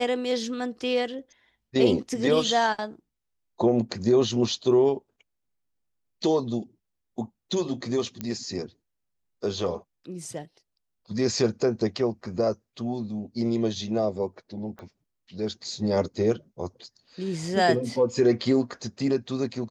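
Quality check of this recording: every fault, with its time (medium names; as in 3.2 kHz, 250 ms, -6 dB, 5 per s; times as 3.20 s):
8.21 s: pop -17 dBFS
14.79 s: pop -29 dBFS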